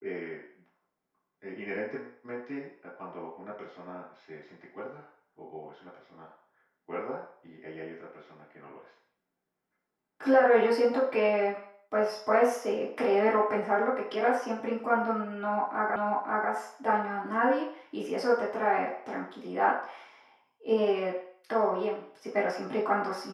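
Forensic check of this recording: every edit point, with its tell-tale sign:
15.96 repeat of the last 0.54 s

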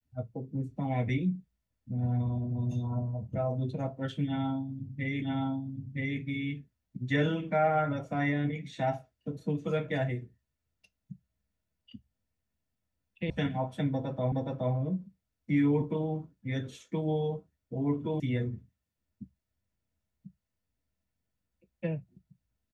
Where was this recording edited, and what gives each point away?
5.22 repeat of the last 0.97 s
13.3 sound cut off
14.32 repeat of the last 0.42 s
18.2 sound cut off

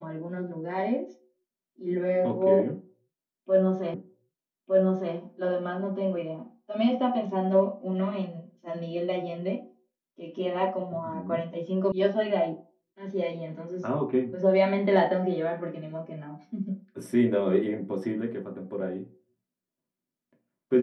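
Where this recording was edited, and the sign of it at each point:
3.94 repeat of the last 1.21 s
11.92 sound cut off

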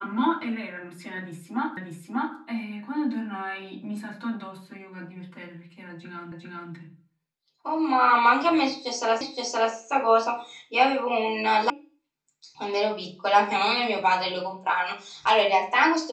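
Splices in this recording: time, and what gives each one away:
1.77 repeat of the last 0.59 s
6.32 repeat of the last 0.4 s
9.21 repeat of the last 0.52 s
11.7 sound cut off

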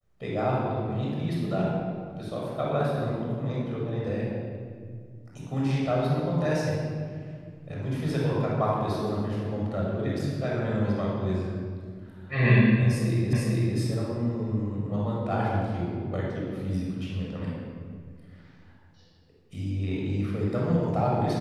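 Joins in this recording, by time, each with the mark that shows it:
13.33 repeat of the last 0.45 s

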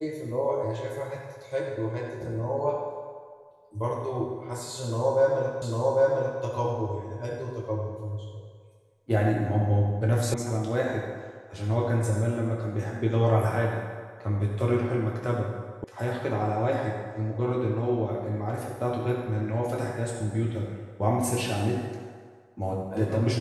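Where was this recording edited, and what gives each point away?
5.62 repeat of the last 0.8 s
10.34 sound cut off
15.84 sound cut off

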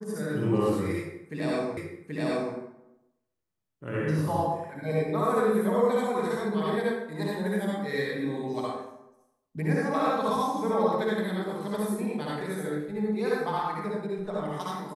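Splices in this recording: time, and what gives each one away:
1.77 repeat of the last 0.78 s

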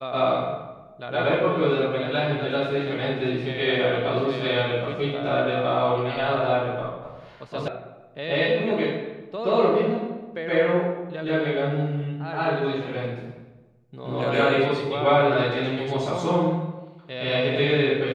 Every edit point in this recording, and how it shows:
7.68 sound cut off

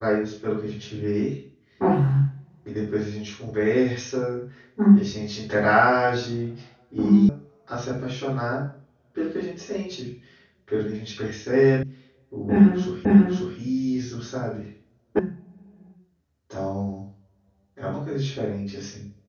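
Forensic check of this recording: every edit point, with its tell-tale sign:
7.29 sound cut off
11.83 sound cut off
13.05 repeat of the last 0.54 s
15.19 sound cut off

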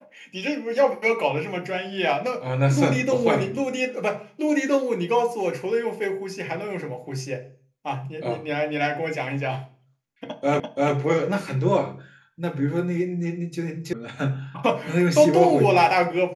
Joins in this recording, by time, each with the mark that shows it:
10.6 repeat of the last 0.34 s
13.93 sound cut off

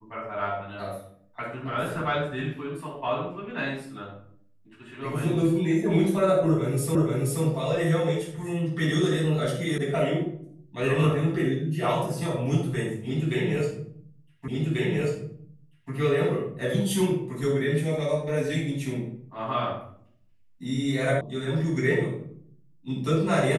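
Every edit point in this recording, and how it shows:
6.95 repeat of the last 0.48 s
9.78 sound cut off
14.48 repeat of the last 1.44 s
21.21 sound cut off

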